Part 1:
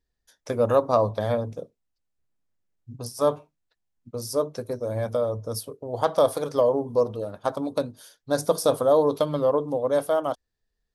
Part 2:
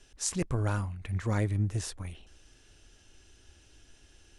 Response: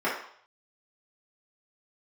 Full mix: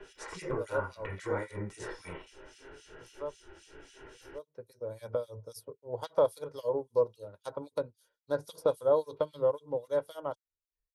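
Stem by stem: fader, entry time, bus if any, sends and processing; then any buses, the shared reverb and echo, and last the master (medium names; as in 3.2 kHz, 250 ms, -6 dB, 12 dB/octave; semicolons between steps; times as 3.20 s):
-3.5 dB, 0.00 s, no send, upward expansion 1.5:1, over -55 dBFS; auto duck -16 dB, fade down 1.35 s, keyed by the second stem
+3.0 dB, 0.00 s, send -6.5 dB, compression, threshold -30 dBFS, peak gain reduction 7 dB; flange 0.61 Hz, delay 4.9 ms, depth 3.2 ms, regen +70%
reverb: on, RT60 0.60 s, pre-delay 3 ms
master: comb 2.1 ms, depth 54%; harmonic tremolo 3.7 Hz, depth 100%, crossover 2.5 kHz; three bands compressed up and down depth 40%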